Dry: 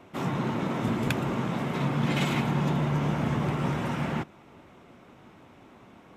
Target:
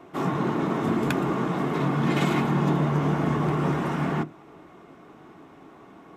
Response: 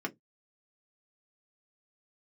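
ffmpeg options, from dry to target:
-filter_complex "[0:a]asplit=2[a][b];[1:a]atrim=start_sample=2205,lowpass=2.1k[c];[b][c]afir=irnorm=-1:irlink=0,volume=-5dB[d];[a][d]amix=inputs=2:normalize=0"

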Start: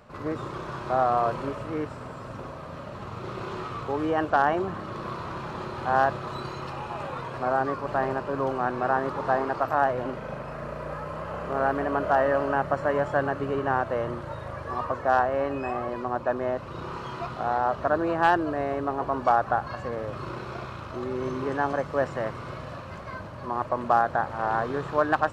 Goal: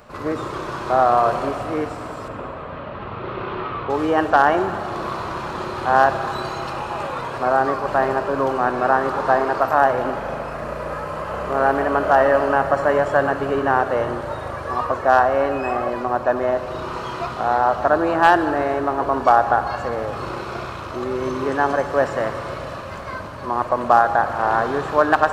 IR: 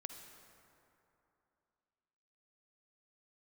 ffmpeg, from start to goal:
-filter_complex "[0:a]asettb=1/sr,asplit=3[a][b][c];[a]atrim=end=2.284[d];[b]atrim=start=2.28:end=3.9,asetpts=PTS-STARTPTS,afade=t=in:d=0.004:c=qsin,afade=t=out:st=1.616:d=0.004:c=qsin,lowpass=f=3.3k:w=0.5412,lowpass=f=3.3k:w=1.3066[e];[c]atrim=start=3.896[f];[d][e]acrossfade=d=0.004:c1=hsin:c2=qsin[g];[g][f]acrossfade=d=0.004:c1=qsin:c2=hsin,asplit=2[h][i];[i]equalizer=f=140:w=1.5:g=-13.5[j];[1:a]atrim=start_sample=2205,highshelf=f=6.8k:g=9.5[k];[j][k]afir=irnorm=-1:irlink=0,volume=7dB[l];[h][l]amix=inputs=2:normalize=0"

